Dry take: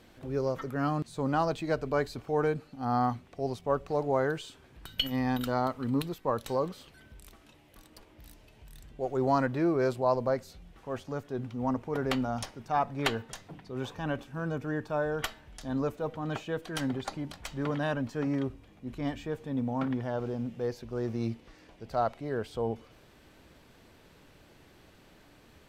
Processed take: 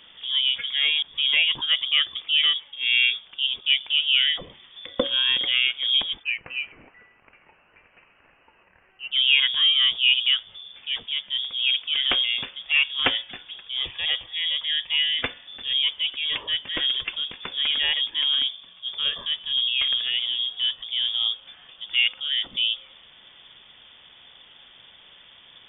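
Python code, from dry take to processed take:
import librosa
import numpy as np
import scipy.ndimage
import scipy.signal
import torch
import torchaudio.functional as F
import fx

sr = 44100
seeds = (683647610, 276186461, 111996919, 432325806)

y = fx.highpass(x, sr, hz=800.0, slope=24, at=(6.22, 9.11), fade=0.02)
y = fx.freq_invert(y, sr, carrier_hz=3500)
y = y * librosa.db_to_amplitude(7.0)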